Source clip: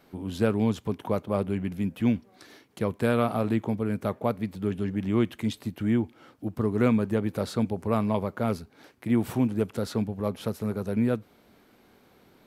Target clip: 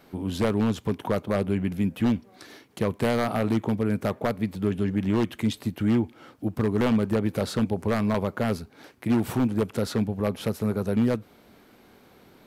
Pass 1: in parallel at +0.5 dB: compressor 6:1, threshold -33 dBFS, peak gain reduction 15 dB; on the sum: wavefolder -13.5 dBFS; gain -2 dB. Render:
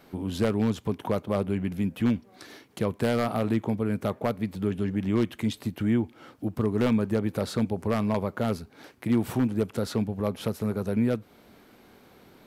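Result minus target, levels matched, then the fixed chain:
compressor: peak gain reduction +7 dB
in parallel at +0.5 dB: compressor 6:1, threshold -24.5 dBFS, peak gain reduction 8 dB; on the sum: wavefolder -13.5 dBFS; gain -2 dB

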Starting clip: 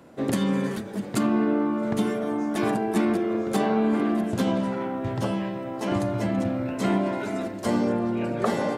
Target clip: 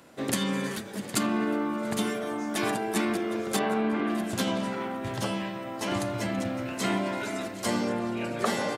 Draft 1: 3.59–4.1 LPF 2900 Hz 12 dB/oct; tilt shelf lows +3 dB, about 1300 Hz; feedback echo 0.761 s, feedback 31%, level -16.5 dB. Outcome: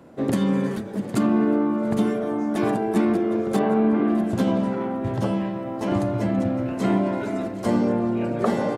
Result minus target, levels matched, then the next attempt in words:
1000 Hz band -3.5 dB
3.59–4.1 LPF 2900 Hz 12 dB/oct; tilt shelf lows -6 dB, about 1300 Hz; feedback echo 0.761 s, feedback 31%, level -16.5 dB

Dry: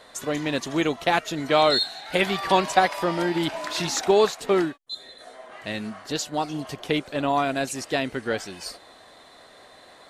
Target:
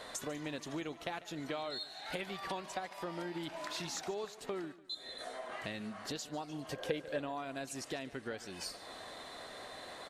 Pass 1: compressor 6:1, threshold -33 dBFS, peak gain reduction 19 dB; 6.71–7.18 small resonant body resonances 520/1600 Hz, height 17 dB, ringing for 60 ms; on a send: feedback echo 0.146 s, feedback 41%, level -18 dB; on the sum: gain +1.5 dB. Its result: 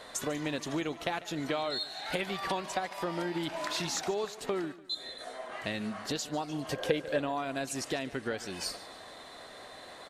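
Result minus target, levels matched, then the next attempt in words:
compressor: peak gain reduction -7 dB
compressor 6:1, threshold -41.5 dBFS, peak gain reduction 26 dB; 6.71–7.18 small resonant body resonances 520/1600 Hz, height 17 dB, ringing for 60 ms; on a send: feedback echo 0.146 s, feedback 41%, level -18 dB; on the sum: gain +1.5 dB

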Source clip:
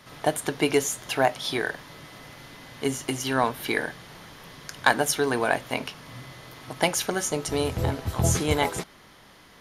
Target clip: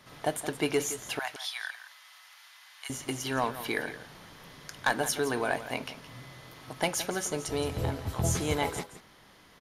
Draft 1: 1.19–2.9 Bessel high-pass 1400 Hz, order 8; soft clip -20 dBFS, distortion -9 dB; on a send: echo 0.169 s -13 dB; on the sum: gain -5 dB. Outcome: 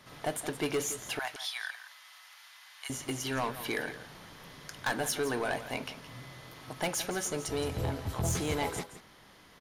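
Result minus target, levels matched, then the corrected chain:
soft clip: distortion +10 dB
1.19–2.9 Bessel high-pass 1400 Hz, order 8; soft clip -9.5 dBFS, distortion -20 dB; on a send: echo 0.169 s -13 dB; on the sum: gain -5 dB

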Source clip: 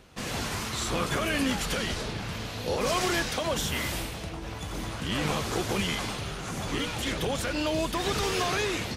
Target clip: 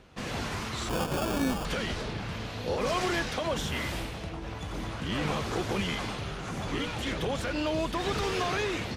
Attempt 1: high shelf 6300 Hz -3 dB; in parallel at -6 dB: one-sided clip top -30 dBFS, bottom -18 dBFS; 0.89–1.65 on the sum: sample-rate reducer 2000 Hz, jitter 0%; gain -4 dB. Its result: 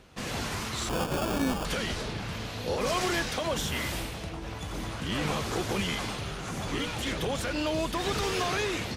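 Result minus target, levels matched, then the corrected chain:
8000 Hz band +3.5 dB
high shelf 6300 Hz -12 dB; in parallel at -6 dB: one-sided clip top -30 dBFS, bottom -18 dBFS; 0.89–1.65 on the sum: sample-rate reducer 2000 Hz, jitter 0%; gain -4 dB

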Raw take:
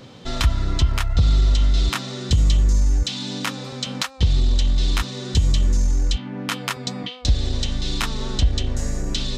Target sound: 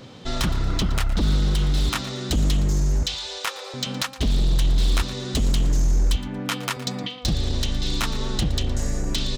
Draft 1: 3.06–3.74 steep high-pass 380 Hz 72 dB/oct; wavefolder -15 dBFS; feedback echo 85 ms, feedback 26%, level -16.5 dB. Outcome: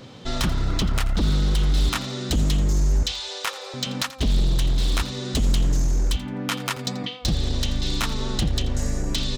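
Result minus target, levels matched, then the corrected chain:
echo 31 ms early
3.06–3.74 steep high-pass 380 Hz 72 dB/oct; wavefolder -15 dBFS; feedback echo 0.116 s, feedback 26%, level -16.5 dB

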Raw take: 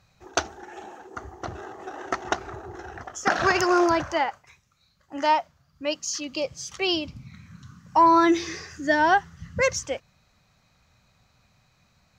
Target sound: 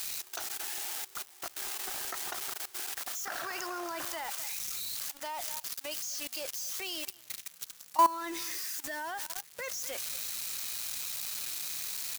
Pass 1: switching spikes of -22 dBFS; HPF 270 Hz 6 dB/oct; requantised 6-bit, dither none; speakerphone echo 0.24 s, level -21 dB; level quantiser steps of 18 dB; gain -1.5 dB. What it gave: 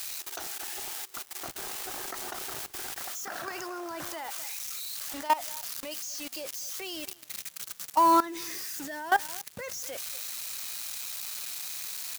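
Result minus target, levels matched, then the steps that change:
250 Hz band +6.5 dB
change: HPF 860 Hz 6 dB/oct

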